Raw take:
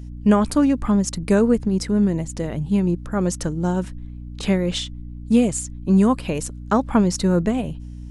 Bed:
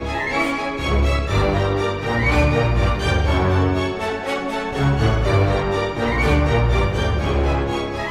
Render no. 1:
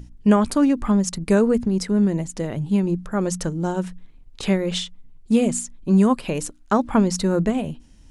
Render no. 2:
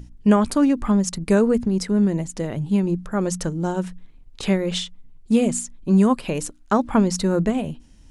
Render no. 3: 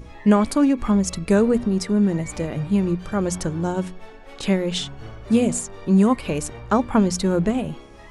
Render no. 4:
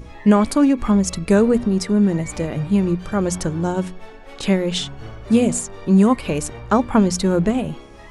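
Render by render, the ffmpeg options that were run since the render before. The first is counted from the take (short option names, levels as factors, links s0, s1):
-af "bandreject=f=60:t=h:w=6,bandreject=f=120:t=h:w=6,bandreject=f=180:t=h:w=6,bandreject=f=240:t=h:w=6,bandreject=f=300:t=h:w=6"
-af anull
-filter_complex "[1:a]volume=0.0891[s0];[0:a][s0]amix=inputs=2:normalize=0"
-af "volume=1.33,alimiter=limit=0.708:level=0:latency=1"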